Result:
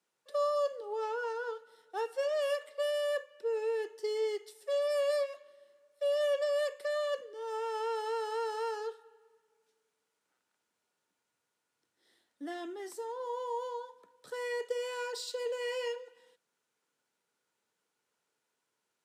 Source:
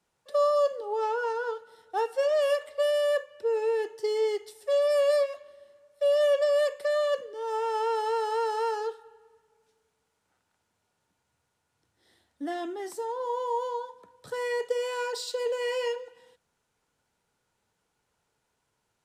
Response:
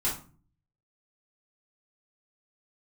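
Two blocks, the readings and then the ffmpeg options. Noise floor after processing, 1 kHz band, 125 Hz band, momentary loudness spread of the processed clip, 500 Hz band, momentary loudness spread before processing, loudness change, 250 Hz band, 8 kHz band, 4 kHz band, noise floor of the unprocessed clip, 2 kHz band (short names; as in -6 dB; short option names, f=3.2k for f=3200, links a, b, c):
-84 dBFS, -7.5 dB, n/a, 11 LU, -6.5 dB, 11 LU, -6.5 dB, -6.5 dB, -4.5 dB, -4.5 dB, -78 dBFS, -5.0 dB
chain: -af "highpass=270,equalizer=f=770:t=o:w=0.77:g=-5,volume=-4.5dB"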